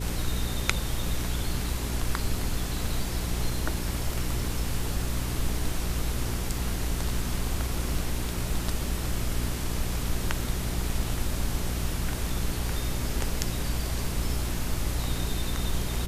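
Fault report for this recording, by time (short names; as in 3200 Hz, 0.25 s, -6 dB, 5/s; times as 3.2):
hum 60 Hz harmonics 7 -32 dBFS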